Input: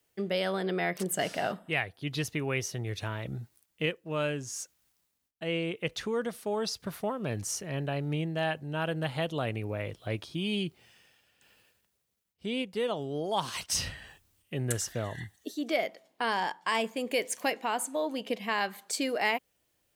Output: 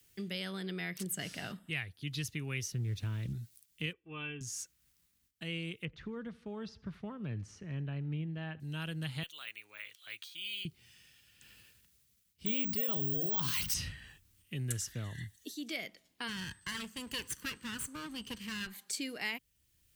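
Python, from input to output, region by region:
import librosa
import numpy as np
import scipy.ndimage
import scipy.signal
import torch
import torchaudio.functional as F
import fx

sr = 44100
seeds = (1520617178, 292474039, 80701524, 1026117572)

y = fx.chain(x, sr, fx.delta_hold(step_db=-52.0),
    fx.tilt_shelf(db=5.5, hz=720.0),
    fx.doppler_dist(depth_ms=0.12), at=(2.72, 3.33))
y = fx.chain(y, sr, fx.cheby_ripple(hz=3500.0, ripple_db=6),
    fx.comb(ms=2.6, depth=0.73), at=(3.93, 4.41))
y = fx.chain(y, sr, fx.lowpass(hz=1400.0, slope=12),
    fx.echo_feedback(ms=79, feedback_pct=52, wet_db=-23.0), at=(5.85, 8.6))
y = fx.chain(y, sr, fx.highpass(hz=1400.0, slope=12),
    fx.notch(hz=5200.0, q=6.9),
    fx.resample_bad(factor=2, down='filtered', up='hold'), at=(9.23, 10.65))
y = fx.chain(y, sr, fx.hum_notches(base_hz=50, count=6),
    fx.resample_bad(factor=2, down='filtered', up='zero_stuff'),
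    fx.env_flatten(amount_pct=70), at=(12.46, 13.74))
y = fx.lower_of_two(y, sr, delay_ms=0.66, at=(16.27, 18.66), fade=0.02)
y = fx.highpass(y, sr, hz=93.0, slope=12, at=(16.27, 18.66), fade=0.02)
y = fx.dmg_tone(y, sr, hz=8200.0, level_db=-64.0, at=(16.27, 18.66), fade=0.02)
y = fx.tone_stack(y, sr, knobs='6-0-2')
y = fx.band_squash(y, sr, depth_pct=40)
y = y * 10.0 ** (12.0 / 20.0)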